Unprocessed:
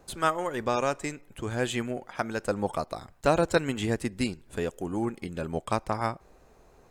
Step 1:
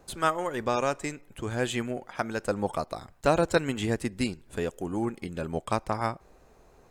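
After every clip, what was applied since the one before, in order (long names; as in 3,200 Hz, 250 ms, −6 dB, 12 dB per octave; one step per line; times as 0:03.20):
no processing that can be heard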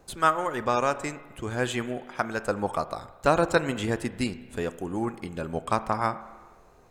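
dynamic equaliser 1,200 Hz, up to +5 dB, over −40 dBFS, Q 1.3
spring reverb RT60 1.4 s, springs 32/41 ms, chirp 75 ms, DRR 13.5 dB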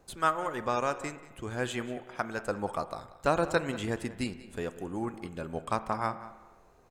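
slap from a distant wall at 32 metres, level −16 dB
level −5 dB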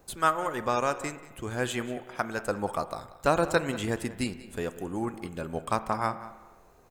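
high-shelf EQ 12,000 Hz +12 dB
level +2.5 dB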